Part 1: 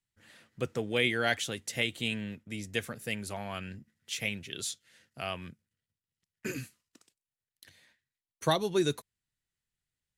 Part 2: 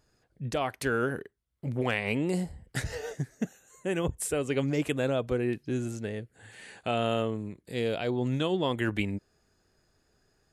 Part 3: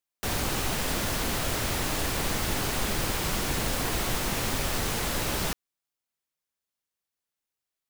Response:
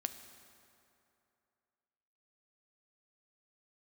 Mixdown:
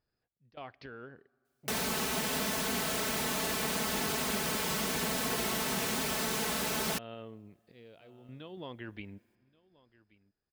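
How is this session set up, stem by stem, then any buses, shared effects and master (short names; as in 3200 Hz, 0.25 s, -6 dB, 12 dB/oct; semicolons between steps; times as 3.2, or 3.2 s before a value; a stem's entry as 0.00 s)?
off
-12.5 dB, 0.00 s, send -15.5 dB, echo send -22.5 dB, elliptic low-pass 5100 Hz; random-step tremolo, depth 90%
+1.0 dB, 1.45 s, no send, no echo send, HPF 120 Hz 12 dB/oct; comb 4.6 ms, depth 82%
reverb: on, RT60 2.7 s, pre-delay 4 ms
echo: echo 1.129 s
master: compressor 1.5:1, threshold -40 dBFS, peak gain reduction 6.5 dB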